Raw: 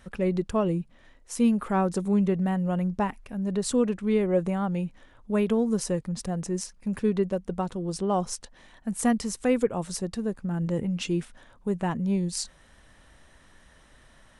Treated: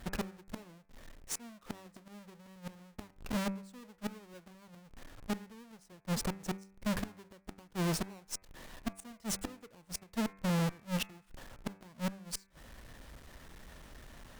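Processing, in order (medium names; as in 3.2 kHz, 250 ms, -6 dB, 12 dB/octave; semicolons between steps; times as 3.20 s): square wave that keeps the level; inverted gate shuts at -21 dBFS, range -32 dB; valve stage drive 30 dB, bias 0.5; de-hum 96.98 Hz, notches 27; trim +1 dB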